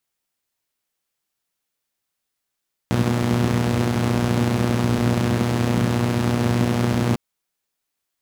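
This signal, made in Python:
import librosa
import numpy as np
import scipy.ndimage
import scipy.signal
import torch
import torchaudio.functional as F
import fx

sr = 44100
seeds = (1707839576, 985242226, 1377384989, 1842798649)

y = fx.engine_four(sr, seeds[0], length_s=4.25, rpm=3600, resonances_hz=(110.0, 190.0))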